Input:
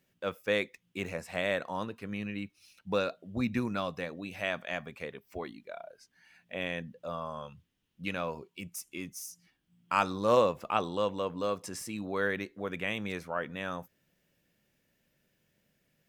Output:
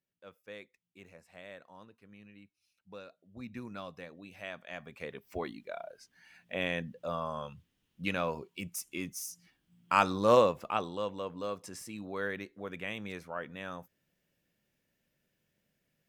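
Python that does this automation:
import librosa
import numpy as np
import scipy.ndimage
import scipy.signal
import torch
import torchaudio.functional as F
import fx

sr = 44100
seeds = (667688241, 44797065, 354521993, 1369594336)

y = fx.gain(x, sr, db=fx.line((3.08, -18.0), (3.78, -9.5), (4.64, -9.5), (5.24, 2.0), (10.31, 2.0), (10.97, -5.0)))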